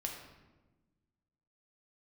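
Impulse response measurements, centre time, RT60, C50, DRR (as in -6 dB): 39 ms, 1.2 s, 4.5 dB, 0.5 dB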